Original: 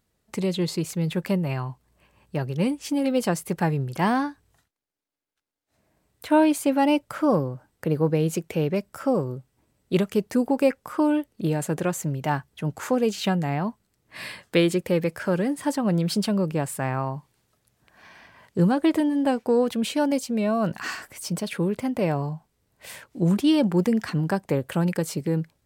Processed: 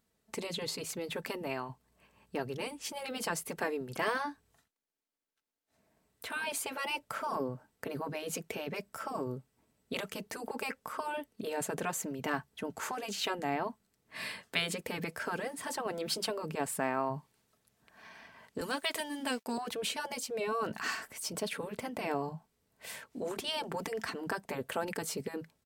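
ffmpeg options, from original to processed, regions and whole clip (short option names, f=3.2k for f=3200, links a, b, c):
-filter_complex "[0:a]asettb=1/sr,asplit=3[a][b][c];[a]atrim=end=18.614[d];[b]atrim=start=18.61:end=19.58,asetpts=PTS-STARTPTS,afade=t=in:d=0.004:c=qsin,afade=t=out:st=0.966:d=0.004:c=qsin,tiltshelf=f=1.3k:g=-8.5,aeval=exprs='sgn(val(0))*max(abs(val(0))-0.00168,0)':c=same[e];[c]atrim=start=19.576[f];[d][e]acrossfade=d=0.004:c1=hsin:c2=qsin[g];[g][f]acrossfade=d=0.004:c1=qsin:c2=hsin,afftfilt=real='re*lt(hypot(re,im),0.355)':imag='im*lt(hypot(re,im),0.355)':win_size=1024:overlap=0.75,lowshelf=f=73:g=-8.5,aecho=1:1:4.5:0.3,volume=-4dB"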